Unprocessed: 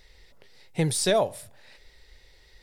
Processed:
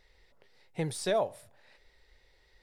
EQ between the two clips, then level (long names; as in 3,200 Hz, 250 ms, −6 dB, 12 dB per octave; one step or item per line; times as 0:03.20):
low-shelf EQ 450 Hz −8.5 dB
high-shelf EQ 2,100 Hz −11.5 dB
−1.5 dB